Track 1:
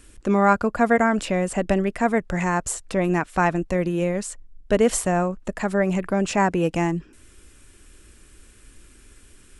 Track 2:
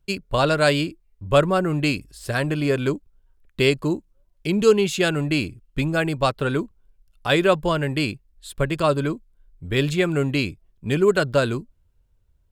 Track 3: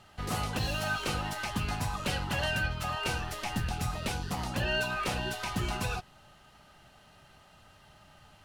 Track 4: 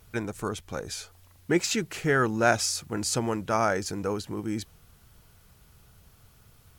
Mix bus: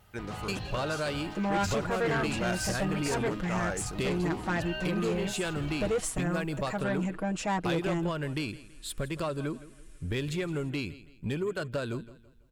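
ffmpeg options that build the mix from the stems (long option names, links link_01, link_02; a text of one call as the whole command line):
ffmpeg -i stem1.wav -i stem2.wav -i stem3.wav -i stem4.wav -filter_complex "[0:a]aecho=1:1:6.3:0.83,adelay=1100,volume=-10dB[link_01];[1:a]acompressor=threshold=-29dB:ratio=6,adelay=400,volume=0.5dB,asplit=2[link_02][link_03];[link_03]volume=-18.5dB[link_04];[2:a]lowpass=4000,volume=-6.5dB[link_05];[3:a]volume=-7.5dB[link_06];[link_04]aecho=0:1:165|330|495|660|825:1|0.35|0.122|0.0429|0.015[link_07];[link_01][link_02][link_05][link_06][link_07]amix=inputs=5:normalize=0,asoftclip=type=tanh:threshold=-23dB" out.wav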